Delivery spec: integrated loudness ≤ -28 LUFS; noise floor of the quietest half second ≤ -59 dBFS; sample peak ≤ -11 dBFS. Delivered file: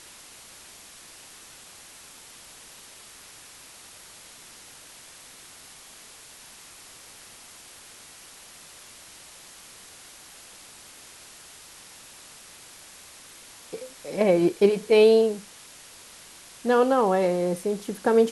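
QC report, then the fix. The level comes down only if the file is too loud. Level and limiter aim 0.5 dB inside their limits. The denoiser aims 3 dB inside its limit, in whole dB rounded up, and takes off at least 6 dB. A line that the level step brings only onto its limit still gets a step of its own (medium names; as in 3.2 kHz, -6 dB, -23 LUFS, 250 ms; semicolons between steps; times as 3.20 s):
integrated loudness -22.0 LUFS: fail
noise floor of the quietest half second -48 dBFS: fail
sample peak -7.0 dBFS: fail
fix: noise reduction 8 dB, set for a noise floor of -48 dBFS; trim -6.5 dB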